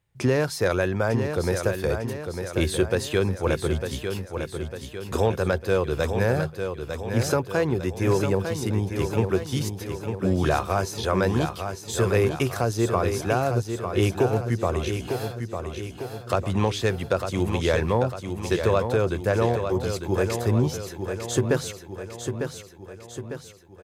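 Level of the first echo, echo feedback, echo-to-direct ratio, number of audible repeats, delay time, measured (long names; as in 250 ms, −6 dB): −7.0 dB, 52%, −5.5 dB, 5, 901 ms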